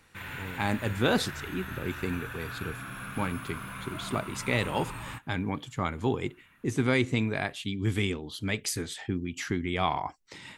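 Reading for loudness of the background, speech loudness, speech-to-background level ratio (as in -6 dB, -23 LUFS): -39.5 LUFS, -31.5 LUFS, 8.0 dB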